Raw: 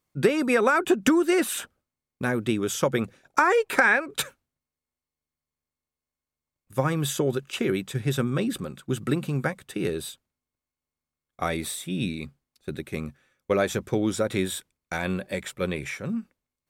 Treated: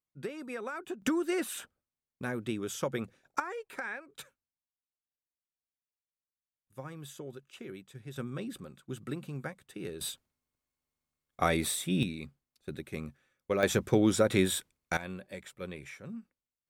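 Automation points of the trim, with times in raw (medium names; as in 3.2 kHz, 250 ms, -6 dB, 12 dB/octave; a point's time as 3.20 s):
-18 dB
from 1.02 s -9.5 dB
from 3.40 s -19 dB
from 8.16 s -12.5 dB
from 10.01 s 0 dB
from 12.03 s -7 dB
from 13.63 s 0 dB
from 14.97 s -13 dB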